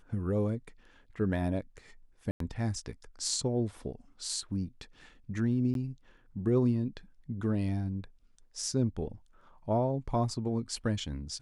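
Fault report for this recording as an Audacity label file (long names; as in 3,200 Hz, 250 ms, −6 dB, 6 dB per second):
2.310000	2.400000	drop-out 93 ms
5.740000	5.750000	drop-out 12 ms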